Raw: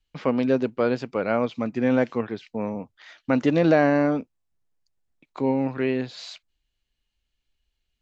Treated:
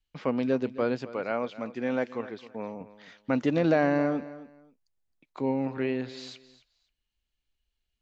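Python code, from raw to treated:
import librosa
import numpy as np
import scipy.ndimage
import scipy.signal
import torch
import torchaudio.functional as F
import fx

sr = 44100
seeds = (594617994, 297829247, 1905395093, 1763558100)

y = fx.low_shelf(x, sr, hz=210.0, db=-11.0, at=(1.13, 2.81))
y = fx.echo_feedback(y, sr, ms=265, feedback_pct=22, wet_db=-16.5)
y = y * 10.0 ** (-5.0 / 20.0)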